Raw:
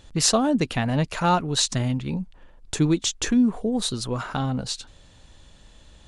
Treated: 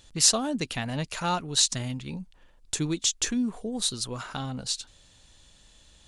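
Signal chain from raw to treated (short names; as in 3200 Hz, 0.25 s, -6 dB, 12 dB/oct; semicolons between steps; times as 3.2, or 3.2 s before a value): high shelf 2600 Hz +11.5 dB; gain -8.5 dB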